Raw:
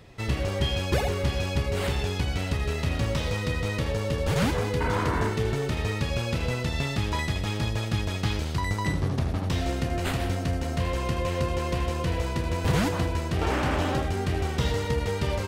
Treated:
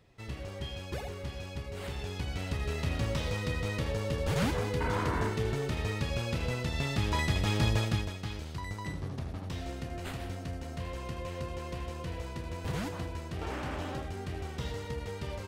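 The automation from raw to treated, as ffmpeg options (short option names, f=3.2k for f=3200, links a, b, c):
-af "volume=1dB,afade=t=in:st=1.74:d=1.06:silence=0.398107,afade=t=in:st=6.72:d=1.01:silence=0.501187,afade=t=out:st=7.73:d=0.42:silence=0.251189"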